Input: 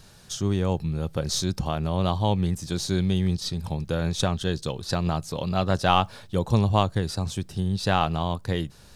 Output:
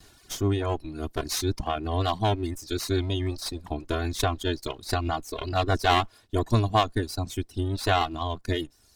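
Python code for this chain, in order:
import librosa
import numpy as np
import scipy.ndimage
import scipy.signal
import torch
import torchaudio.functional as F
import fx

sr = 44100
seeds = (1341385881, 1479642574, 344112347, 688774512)

y = fx.lower_of_two(x, sr, delay_ms=2.8)
y = fx.vibrato(y, sr, rate_hz=5.5, depth_cents=35.0)
y = fx.dereverb_blind(y, sr, rt60_s=1.4)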